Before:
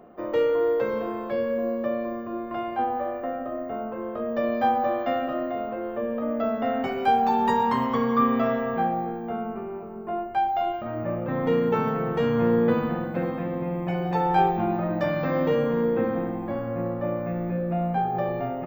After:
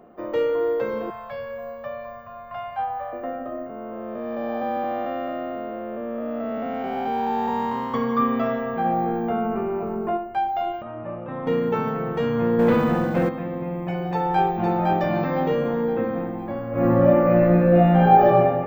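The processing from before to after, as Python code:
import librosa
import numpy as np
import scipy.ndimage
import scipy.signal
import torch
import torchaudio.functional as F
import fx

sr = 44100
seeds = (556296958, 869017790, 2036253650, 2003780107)

y = fx.cheby1_bandstop(x, sr, low_hz=140.0, high_hz=710.0, order=2, at=(1.1, 3.13))
y = fx.spec_blur(y, sr, span_ms=459.0, at=(3.66, 7.94))
y = fx.env_flatten(y, sr, amount_pct=50, at=(8.84, 10.16), fade=0.02)
y = fx.cheby_ripple(y, sr, hz=3900.0, ripple_db=6, at=(10.82, 11.47))
y = fx.leveller(y, sr, passes=2, at=(12.59, 13.29))
y = fx.echo_throw(y, sr, start_s=14.1, length_s=0.63, ms=510, feedback_pct=40, wet_db=-3.0)
y = fx.reverb_throw(y, sr, start_s=16.7, length_s=1.56, rt60_s=1.7, drr_db=-12.0)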